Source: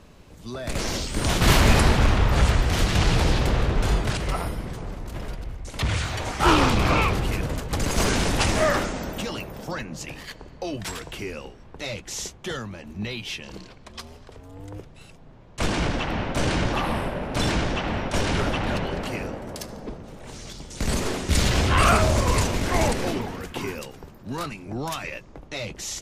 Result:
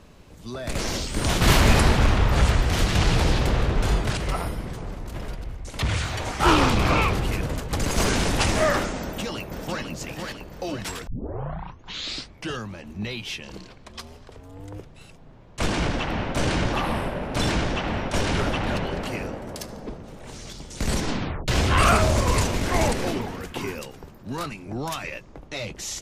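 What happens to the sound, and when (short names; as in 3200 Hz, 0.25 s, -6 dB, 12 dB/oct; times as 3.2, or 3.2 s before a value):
9.01–9.87 echo throw 0.5 s, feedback 60%, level -5 dB
11.07 tape start 1.60 s
20.92 tape stop 0.56 s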